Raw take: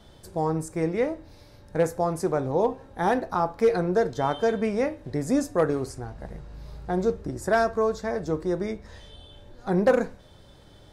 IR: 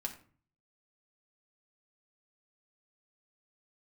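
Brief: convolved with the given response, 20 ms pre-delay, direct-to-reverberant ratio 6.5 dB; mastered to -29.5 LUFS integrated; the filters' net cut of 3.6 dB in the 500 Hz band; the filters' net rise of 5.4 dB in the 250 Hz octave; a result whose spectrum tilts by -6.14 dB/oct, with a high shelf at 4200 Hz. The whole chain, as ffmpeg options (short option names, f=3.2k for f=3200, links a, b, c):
-filter_complex "[0:a]equalizer=f=250:t=o:g=9,equalizer=f=500:t=o:g=-7,highshelf=f=4.2k:g=8,asplit=2[a][b];[1:a]atrim=start_sample=2205,adelay=20[c];[b][c]afir=irnorm=-1:irlink=0,volume=-6.5dB[d];[a][d]amix=inputs=2:normalize=0,volume=-5dB"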